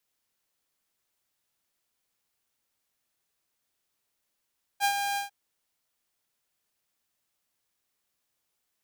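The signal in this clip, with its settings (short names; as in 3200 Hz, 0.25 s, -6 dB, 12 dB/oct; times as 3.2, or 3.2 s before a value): ADSR saw 804 Hz, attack 45 ms, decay 80 ms, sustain -6.5 dB, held 0.37 s, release 0.128 s -18.5 dBFS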